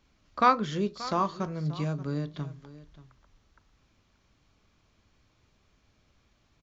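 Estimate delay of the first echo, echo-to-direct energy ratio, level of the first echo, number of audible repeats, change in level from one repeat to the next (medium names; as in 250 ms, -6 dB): 581 ms, -17.0 dB, -17.0 dB, 1, no regular repeats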